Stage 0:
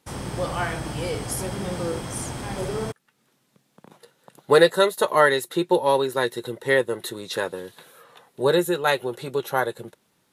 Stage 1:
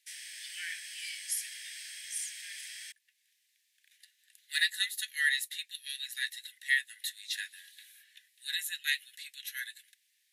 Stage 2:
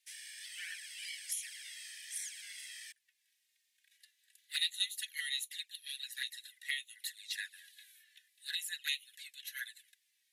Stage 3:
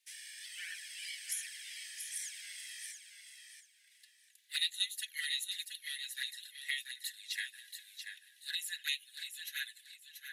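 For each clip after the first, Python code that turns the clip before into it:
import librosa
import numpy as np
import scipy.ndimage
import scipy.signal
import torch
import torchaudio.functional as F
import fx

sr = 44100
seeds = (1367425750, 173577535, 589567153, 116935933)

y1 = scipy.signal.sosfilt(scipy.signal.butter(16, 1700.0, 'highpass', fs=sr, output='sos'), x)
y1 = F.gain(torch.from_numpy(y1), -3.0).numpy()
y2 = fx.env_flanger(y1, sr, rest_ms=3.3, full_db=-31.0)
y2 = F.gain(torch.from_numpy(y2), -1.0).numpy()
y3 = fx.echo_feedback(y2, sr, ms=684, feedback_pct=24, wet_db=-7.0)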